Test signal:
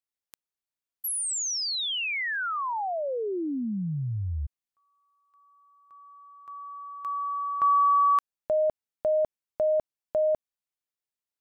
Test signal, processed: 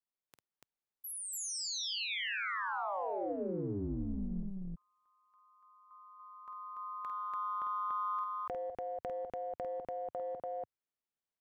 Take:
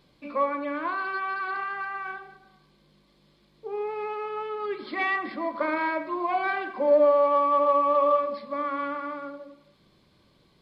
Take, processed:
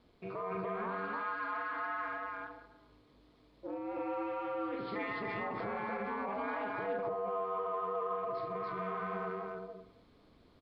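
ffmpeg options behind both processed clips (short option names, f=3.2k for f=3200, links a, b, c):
-filter_complex "[0:a]highpass=f=44:p=1,highshelf=f=2.7k:g=-11,aeval=exprs='val(0)*sin(2*PI*98*n/s)':c=same,acompressor=threshold=-37dB:ratio=6:attack=1.8:release=37:knee=1:detection=peak,asplit=2[a][b];[b]aecho=0:1:49.56|288.6:0.447|0.891[c];[a][c]amix=inputs=2:normalize=0"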